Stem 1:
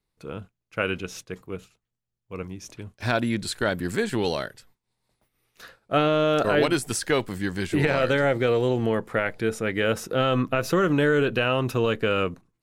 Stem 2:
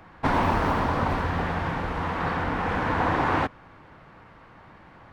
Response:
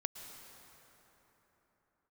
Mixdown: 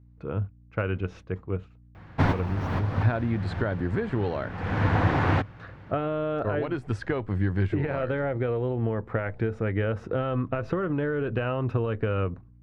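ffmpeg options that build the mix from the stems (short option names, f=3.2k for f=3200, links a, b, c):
-filter_complex "[0:a]lowpass=1.6k,acompressor=threshold=-27dB:ratio=12,aeval=exprs='val(0)+0.00141*(sin(2*PI*60*n/s)+sin(2*PI*2*60*n/s)/2+sin(2*PI*3*60*n/s)/3+sin(2*PI*4*60*n/s)/4+sin(2*PI*5*60*n/s)/5)':c=same,volume=2.5dB,asplit=2[a][b];[1:a]equalizer=f=160:t=o:w=0.67:g=5,equalizer=f=1k:t=o:w=0.67:g=-5,equalizer=f=10k:t=o:w=0.67:g=-9,adelay=1950,volume=-0.5dB[c];[b]apad=whole_len=311791[d];[c][d]sidechaincompress=threshold=-39dB:ratio=10:attack=9.9:release=371[e];[a][e]amix=inputs=2:normalize=0,equalizer=f=100:w=3.2:g=12.5"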